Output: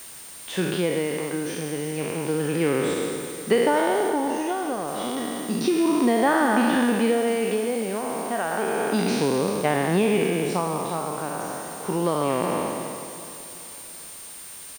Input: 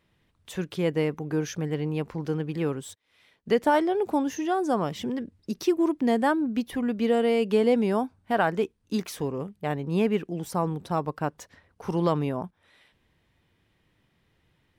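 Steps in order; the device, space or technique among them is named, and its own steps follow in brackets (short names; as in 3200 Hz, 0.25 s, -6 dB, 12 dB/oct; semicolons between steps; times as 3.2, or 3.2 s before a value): spectral trails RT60 1.89 s; medium wave at night (BPF 180–4400 Hz; compressor, threshold -24 dBFS, peak gain reduction 9.5 dB; tremolo 0.31 Hz, depth 63%; whine 9000 Hz -50 dBFS; white noise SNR 19 dB); 4.1–4.88 bell 12000 Hz -3.5 dB 2 oct; feedback echo 0.377 s, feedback 53%, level -15.5 dB; gain +8 dB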